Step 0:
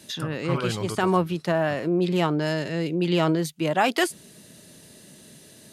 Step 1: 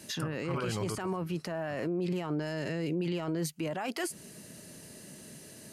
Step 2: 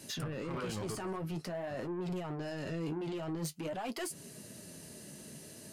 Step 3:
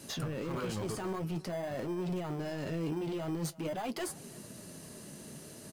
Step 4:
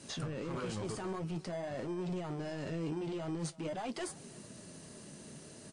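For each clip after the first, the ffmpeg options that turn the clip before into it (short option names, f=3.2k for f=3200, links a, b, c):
-af "equalizer=f=3.6k:w=5.3:g=-10,acompressor=threshold=-26dB:ratio=2.5,alimiter=level_in=1dB:limit=-24dB:level=0:latency=1:release=12,volume=-1dB"
-af "equalizer=f=1.9k:w=1.5:g=-2.5,asoftclip=type=tanh:threshold=-32.5dB,flanger=delay=7.2:depth=6.9:regen=-45:speed=0.48:shape=sinusoidal,volume=3.5dB"
-filter_complex "[0:a]asplit=2[a][b];[b]acrusher=samples=16:mix=1:aa=0.000001,volume=-10dB[c];[a][c]amix=inputs=2:normalize=0,asplit=2[d][e];[e]adelay=332.4,volume=-21dB,highshelf=f=4k:g=-7.48[f];[d][f]amix=inputs=2:normalize=0"
-af "volume=-2.5dB" -ar 22050 -c:a wmav2 -b:a 64k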